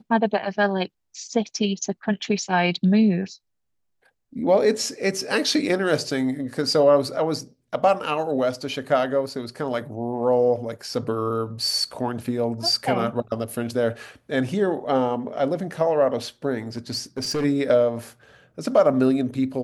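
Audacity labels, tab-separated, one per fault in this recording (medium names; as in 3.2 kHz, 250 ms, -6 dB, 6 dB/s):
16.770000	17.450000	clipped -21 dBFS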